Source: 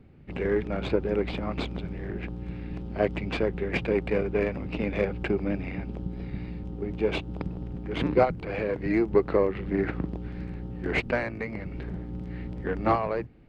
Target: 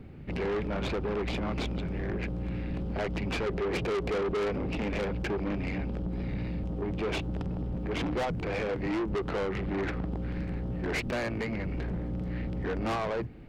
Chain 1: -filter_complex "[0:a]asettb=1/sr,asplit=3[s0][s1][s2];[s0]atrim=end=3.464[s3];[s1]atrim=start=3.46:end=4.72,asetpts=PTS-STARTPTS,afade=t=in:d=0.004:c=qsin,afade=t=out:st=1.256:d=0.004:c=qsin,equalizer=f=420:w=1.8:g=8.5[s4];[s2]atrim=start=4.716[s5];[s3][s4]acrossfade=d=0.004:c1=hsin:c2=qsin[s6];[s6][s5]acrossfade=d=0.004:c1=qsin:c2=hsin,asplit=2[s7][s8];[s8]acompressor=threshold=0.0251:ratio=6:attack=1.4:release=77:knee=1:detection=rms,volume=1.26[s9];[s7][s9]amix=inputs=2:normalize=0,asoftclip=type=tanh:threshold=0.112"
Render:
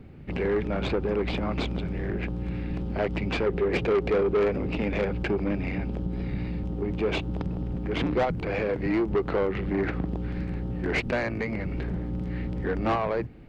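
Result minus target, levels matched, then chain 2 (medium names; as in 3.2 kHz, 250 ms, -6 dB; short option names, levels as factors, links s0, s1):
saturation: distortion -6 dB
-filter_complex "[0:a]asettb=1/sr,asplit=3[s0][s1][s2];[s0]atrim=end=3.464[s3];[s1]atrim=start=3.46:end=4.72,asetpts=PTS-STARTPTS,afade=t=in:d=0.004:c=qsin,afade=t=out:st=1.256:d=0.004:c=qsin,equalizer=f=420:w=1.8:g=8.5[s4];[s2]atrim=start=4.716[s5];[s3][s4]acrossfade=d=0.004:c1=hsin:c2=qsin[s6];[s6][s5]acrossfade=d=0.004:c1=qsin:c2=hsin,asplit=2[s7][s8];[s8]acompressor=threshold=0.0251:ratio=6:attack=1.4:release=77:knee=1:detection=rms,volume=1.26[s9];[s7][s9]amix=inputs=2:normalize=0,asoftclip=type=tanh:threshold=0.0422"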